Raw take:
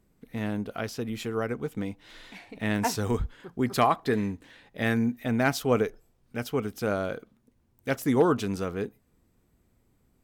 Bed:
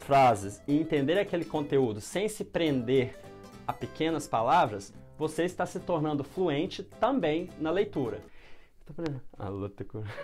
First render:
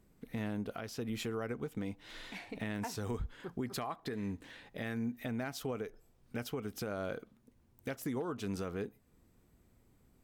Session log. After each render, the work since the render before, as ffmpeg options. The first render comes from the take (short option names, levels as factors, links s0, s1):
-af "acompressor=threshold=0.0355:ratio=6,alimiter=level_in=1.68:limit=0.0631:level=0:latency=1:release=400,volume=0.596"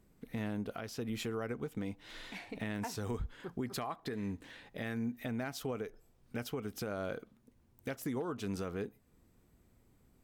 -af anull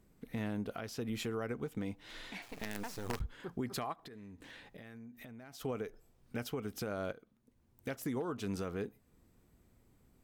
-filter_complex "[0:a]asettb=1/sr,asplit=3[s0][s1][s2];[s0]atrim=end=2.424[s3];[s1]atrim=start=2.42:end=3.21,asetpts=PTS-STARTPTS,afade=t=in:d=0.004:c=qsin,afade=t=out:st=0.786:d=0.004:c=qsin,acrusher=bits=6:dc=4:mix=0:aa=0.000001[s4];[s2]atrim=start=3.206[s5];[s3][s4]acrossfade=d=0.004:c1=hsin:c2=qsin[s6];[s6][s5]acrossfade=d=0.004:c1=qsin:c2=hsin,asplit=3[s7][s8][s9];[s7]afade=t=out:st=3.92:d=0.02[s10];[s8]acompressor=threshold=0.00447:ratio=16:attack=3.2:release=140:knee=1:detection=peak,afade=t=in:st=3.92:d=0.02,afade=t=out:st=5.59:d=0.02[s11];[s9]afade=t=in:st=5.59:d=0.02[s12];[s10][s11][s12]amix=inputs=3:normalize=0,asplit=2[s13][s14];[s13]atrim=end=7.12,asetpts=PTS-STARTPTS,afade=t=out:st=7.116:d=0.004:c=hsin:silence=0.199526[s15];[s14]atrim=start=7.12,asetpts=PTS-STARTPTS,afade=t=in:d=0.82:silence=0.199526[s16];[s15][s16]concat=n=2:v=0:a=1"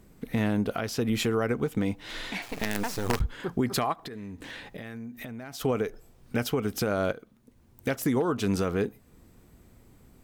-af "volume=3.76"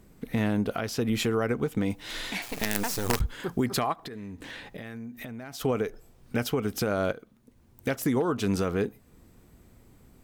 -filter_complex "[0:a]asettb=1/sr,asplit=3[s0][s1][s2];[s0]atrim=end=1.904[s3];[s1]atrim=start=1.9:end=3.66,asetpts=PTS-STARTPTS,afade=t=in:d=0.004:c=qsin,afade=t=out:st=1.756:d=0.004:c=qsin,highshelf=f=5400:g=9[s4];[s2]atrim=start=3.656[s5];[s3][s4]acrossfade=d=0.004:c1=hsin:c2=qsin[s6];[s6][s5]acrossfade=d=0.004:c1=qsin:c2=hsin"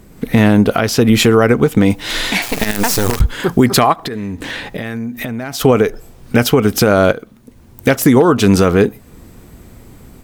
-af "dynaudnorm=f=100:g=3:m=1.58,alimiter=level_in=4.22:limit=0.891:release=50:level=0:latency=1"